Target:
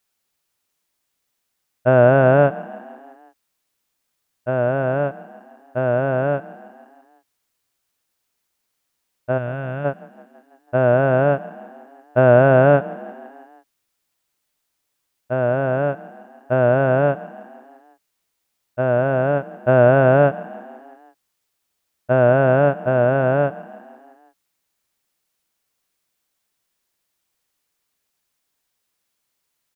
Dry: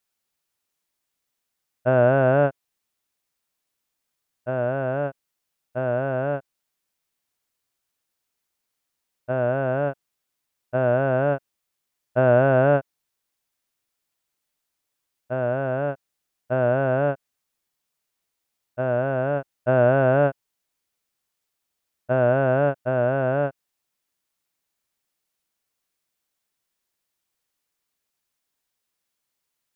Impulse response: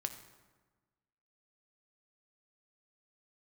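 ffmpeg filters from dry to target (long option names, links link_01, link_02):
-filter_complex "[0:a]asplit=3[link_01][link_02][link_03];[link_01]afade=type=out:start_time=9.37:duration=0.02[link_04];[link_02]equalizer=frequency=560:width=0.39:gain=-12,afade=type=in:start_time=9.37:duration=0.02,afade=type=out:start_time=9.84:duration=0.02[link_05];[link_03]afade=type=in:start_time=9.84:duration=0.02[link_06];[link_04][link_05][link_06]amix=inputs=3:normalize=0,asplit=6[link_07][link_08][link_09][link_10][link_11][link_12];[link_08]adelay=165,afreqshift=31,volume=-20dB[link_13];[link_09]adelay=330,afreqshift=62,volume=-24dB[link_14];[link_10]adelay=495,afreqshift=93,volume=-28dB[link_15];[link_11]adelay=660,afreqshift=124,volume=-32dB[link_16];[link_12]adelay=825,afreqshift=155,volume=-36.1dB[link_17];[link_07][link_13][link_14][link_15][link_16][link_17]amix=inputs=6:normalize=0,volume=5dB"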